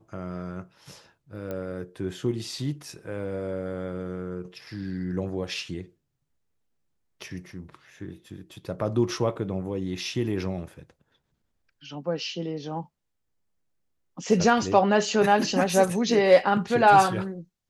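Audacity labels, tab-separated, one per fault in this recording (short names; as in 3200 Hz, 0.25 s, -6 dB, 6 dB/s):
1.510000	1.510000	pop -21 dBFS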